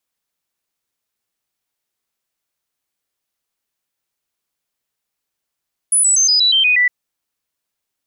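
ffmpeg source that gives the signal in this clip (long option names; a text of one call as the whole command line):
ffmpeg -f lavfi -i "aevalsrc='0.316*clip(min(mod(t,0.12),0.12-mod(t,0.12))/0.005,0,1)*sin(2*PI*9940*pow(2,-floor(t/0.12)/3)*mod(t,0.12))':duration=0.96:sample_rate=44100" out.wav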